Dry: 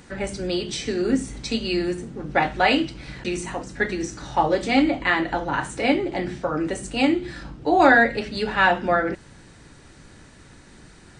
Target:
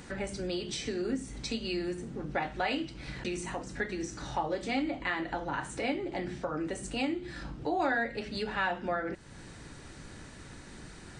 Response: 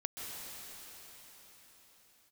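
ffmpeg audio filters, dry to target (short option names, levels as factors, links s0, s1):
-af "acompressor=threshold=0.0112:ratio=2"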